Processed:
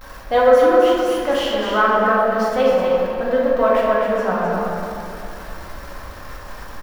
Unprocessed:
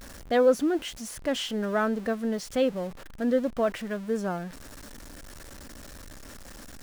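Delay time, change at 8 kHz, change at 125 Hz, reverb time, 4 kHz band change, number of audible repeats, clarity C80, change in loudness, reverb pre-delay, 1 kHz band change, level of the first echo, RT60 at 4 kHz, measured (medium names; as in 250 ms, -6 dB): 259 ms, no reading, +7.0 dB, 2.6 s, +7.5 dB, 1, -2.0 dB, +10.5 dB, 4 ms, +16.5 dB, -4.0 dB, 1.5 s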